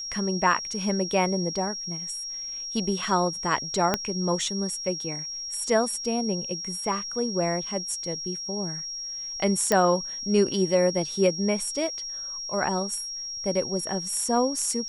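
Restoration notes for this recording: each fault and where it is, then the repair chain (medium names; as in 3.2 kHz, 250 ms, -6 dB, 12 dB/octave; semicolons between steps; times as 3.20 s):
whine 5.6 kHz -32 dBFS
3.94 s: pop -7 dBFS
9.72 s: pop -7 dBFS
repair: de-click; band-stop 5.6 kHz, Q 30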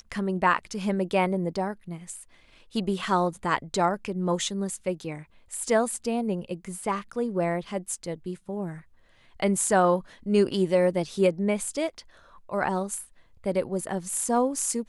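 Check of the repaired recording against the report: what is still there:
3.94 s: pop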